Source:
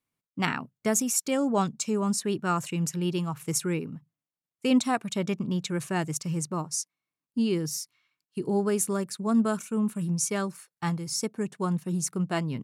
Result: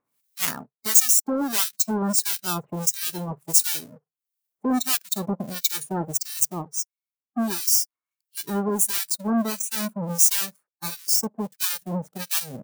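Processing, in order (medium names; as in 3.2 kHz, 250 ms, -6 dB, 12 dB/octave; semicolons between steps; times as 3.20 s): square wave that keeps the level; in parallel at +3 dB: peak limiter -20 dBFS, peak gain reduction 10.5 dB; on the sum: RIAA curve recording; upward compressor, threshold -18 dBFS; dynamic bell 190 Hz, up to +7 dB, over -36 dBFS, Q 0.96; harmonic tremolo 1.5 Hz, depth 100%, crossover 1.3 kHz; waveshaping leveller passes 1; spectral noise reduction 14 dB; trim -10.5 dB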